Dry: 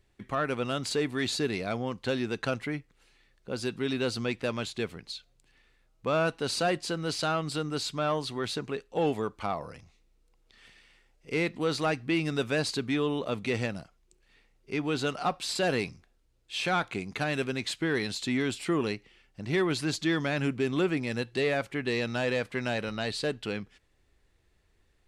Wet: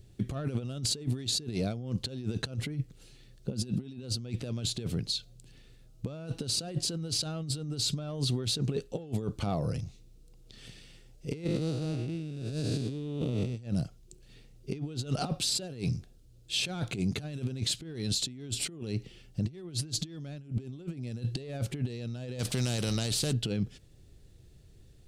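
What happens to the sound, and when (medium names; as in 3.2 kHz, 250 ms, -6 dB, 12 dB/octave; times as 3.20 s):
3.50–4.03 s: small resonant body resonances 210/2600 Hz, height 9 dB
11.44–13.57 s: spectral blur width 356 ms
22.39–23.33 s: spectrum-flattening compressor 2:1
whole clip: ten-band graphic EQ 125 Hz +10 dB, 1 kHz -12 dB, 2 kHz -11 dB; compressor with a negative ratio -35 dBFS, ratio -0.5; peak limiter -25.5 dBFS; trim +4.5 dB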